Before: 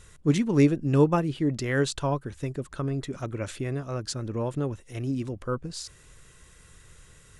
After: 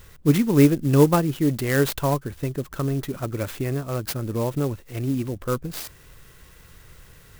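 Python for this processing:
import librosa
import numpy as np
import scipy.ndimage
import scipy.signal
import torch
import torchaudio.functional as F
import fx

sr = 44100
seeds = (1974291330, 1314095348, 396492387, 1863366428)

y = fx.clock_jitter(x, sr, seeds[0], jitter_ms=0.045)
y = y * librosa.db_to_amplitude(4.5)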